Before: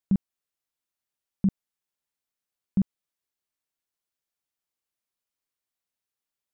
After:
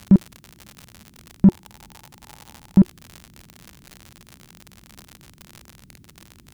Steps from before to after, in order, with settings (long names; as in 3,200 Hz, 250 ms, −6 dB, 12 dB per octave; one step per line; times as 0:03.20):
noise in a band 31–220 Hz −69 dBFS
parametric band 360 Hz +10.5 dB 0.35 octaves
surface crackle 90 per second −43 dBFS
0:01.46–0:02.78: parametric band 860 Hz +12 dB 0.38 octaves
in parallel at −7 dB: soft clipping −29 dBFS, distortion −9 dB
on the sum: boost into a limiter +18 dB
level −4 dB